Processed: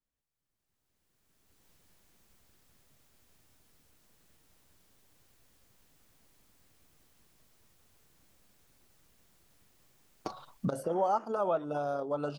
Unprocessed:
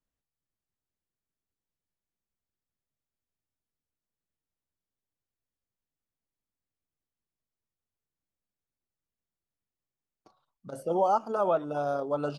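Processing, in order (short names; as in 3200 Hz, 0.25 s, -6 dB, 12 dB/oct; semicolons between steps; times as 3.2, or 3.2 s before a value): recorder AGC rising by 18 dB/s; 10.83–11.24 band noise 280–1400 Hz -49 dBFS; gain -4 dB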